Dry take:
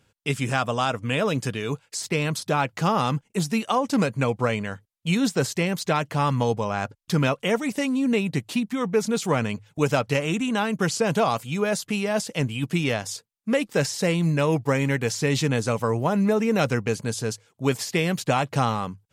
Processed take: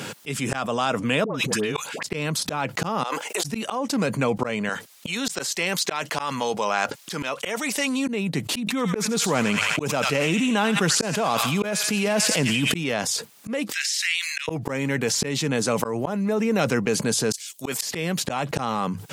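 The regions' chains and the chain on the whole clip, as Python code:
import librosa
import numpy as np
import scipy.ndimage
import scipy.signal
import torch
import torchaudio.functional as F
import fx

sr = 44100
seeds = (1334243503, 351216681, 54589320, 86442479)

y = fx.chain(x, sr, fx.dispersion(late='highs', ms=104.0, hz=940.0),
    fx.over_compress(threshold_db=-33.0, ratio=-0.5), at=(1.24, 2.06))
y = fx.chain(y, sr, fx.highpass(hz=470.0, slope=24),
    fx.over_compress(threshold_db=-39.0, ratio=-1.0), at=(3.03, 3.44))
y = fx.chain(y, sr, fx.highpass(hz=760.0, slope=6),
    fx.peak_eq(hz=5000.0, db=3.5, octaves=2.3), at=(4.69, 8.08))
y = fx.chain(y, sr, fx.echo_wet_highpass(ms=86, feedback_pct=57, hz=1800.0, wet_db=-6),
    fx.sustainer(db_per_s=39.0), at=(8.6, 12.77))
y = fx.chain(y, sr, fx.steep_highpass(hz=1800.0, slope=36),
    fx.high_shelf(hz=5800.0, db=-9.5), at=(13.72, 14.48))
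y = fx.chain(y, sr, fx.tilt_eq(slope=3.0),
    fx.band_widen(depth_pct=100), at=(17.32, 17.82))
y = scipy.signal.sosfilt(scipy.signal.butter(4, 150.0, 'highpass', fs=sr, output='sos'), y)
y = fx.auto_swell(y, sr, attack_ms=645.0)
y = fx.env_flatten(y, sr, amount_pct=70)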